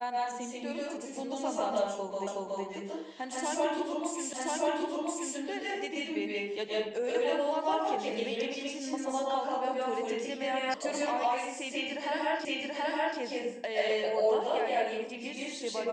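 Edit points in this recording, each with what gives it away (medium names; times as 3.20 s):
2.27 s: repeat of the last 0.37 s
4.33 s: repeat of the last 1.03 s
10.74 s: sound stops dead
12.45 s: repeat of the last 0.73 s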